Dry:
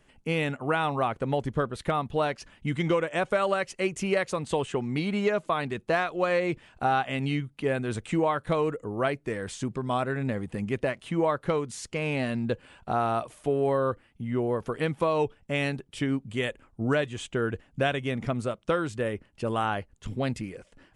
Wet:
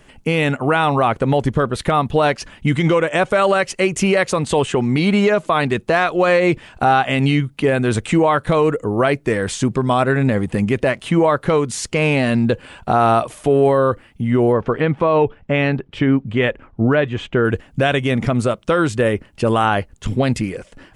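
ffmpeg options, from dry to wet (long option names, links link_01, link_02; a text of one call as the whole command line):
ffmpeg -i in.wav -filter_complex "[0:a]asettb=1/sr,asplit=3[link_01][link_02][link_03];[link_01]atrim=end=14.524[link_04];[link_02]atrim=start=14.52:end=17.45,asetpts=PTS-STARTPTS,afade=type=in:duration=0.004:curve=qsin,afade=type=out:start_time=2.926:duration=0.004:curve=qsin,lowpass=2500[link_05];[link_03]atrim=start=17.446[link_06];[link_04][link_05]acrossfade=duration=0.004:curve1=hsin:curve2=qsin[link_07];[link_07][link_06]acrossfade=duration=0.004:curve1=qsin:curve2=hsin,alimiter=level_in=18.5dB:limit=-1dB:release=50:level=0:latency=1,volume=-5dB" out.wav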